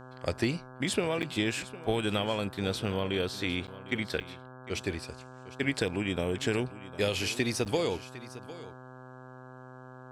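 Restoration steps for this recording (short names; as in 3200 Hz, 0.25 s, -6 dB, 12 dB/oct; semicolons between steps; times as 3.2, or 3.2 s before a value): de-hum 128.1 Hz, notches 13; interpolate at 1.22/3.67/4.2/7.65, 8.3 ms; inverse comb 0.755 s -16 dB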